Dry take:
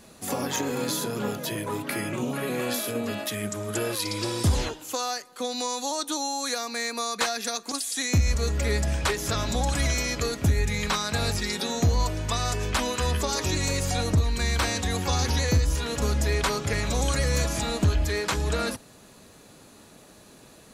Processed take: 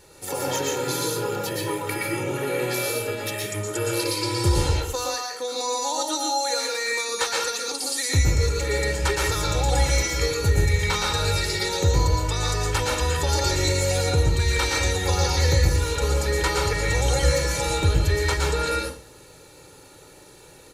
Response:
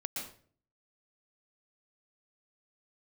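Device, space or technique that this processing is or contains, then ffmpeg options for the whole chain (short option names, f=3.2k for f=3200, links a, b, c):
microphone above a desk: -filter_complex "[0:a]aecho=1:1:2.2:0.88[a];[1:a]atrim=start_sample=2205[b];[a][b]afir=irnorm=-1:irlink=0"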